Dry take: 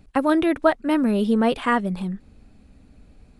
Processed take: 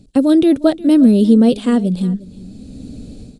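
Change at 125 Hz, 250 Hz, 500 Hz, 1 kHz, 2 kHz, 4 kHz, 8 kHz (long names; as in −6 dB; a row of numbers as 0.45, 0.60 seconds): +10.0 dB, +10.5 dB, +5.0 dB, −6.0 dB, −7.0 dB, +5.0 dB, can't be measured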